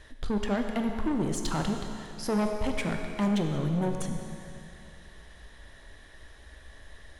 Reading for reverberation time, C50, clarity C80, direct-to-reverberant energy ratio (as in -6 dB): 2.6 s, 5.0 dB, 5.5 dB, 4.0 dB